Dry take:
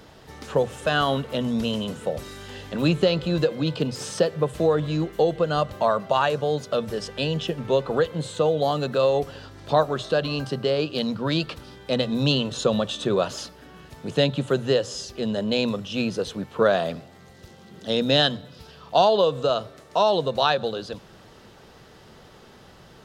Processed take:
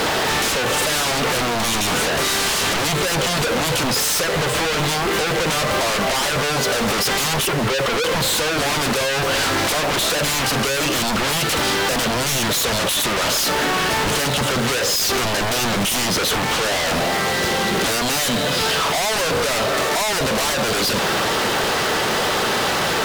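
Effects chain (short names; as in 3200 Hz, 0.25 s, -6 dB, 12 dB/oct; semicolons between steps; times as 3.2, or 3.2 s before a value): 7.46–8.04 spectral contrast raised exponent 1.7; compressor 6:1, threshold -31 dBFS, peak gain reduction 17 dB; bit-crush 9-bit; overdrive pedal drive 27 dB, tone 3600 Hz, clips at -16.5 dBFS; sine folder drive 13 dB, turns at -16.5 dBFS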